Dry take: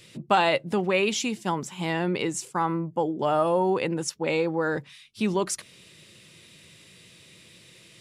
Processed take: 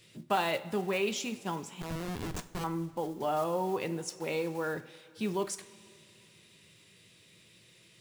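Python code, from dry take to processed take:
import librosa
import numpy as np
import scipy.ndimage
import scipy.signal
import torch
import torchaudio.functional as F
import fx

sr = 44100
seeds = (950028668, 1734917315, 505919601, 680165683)

y = fx.block_float(x, sr, bits=5)
y = fx.schmitt(y, sr, flips_db=-26.5, at=(1.81, 2.64))
y = fx.rev_double_slope(y, sr, seeds[0], early_s=0.33, late_s=2.7, knee_db=-17, drr_db=8.5)
y = F.gain(torch.from_numpy(y), -8.5).numpy()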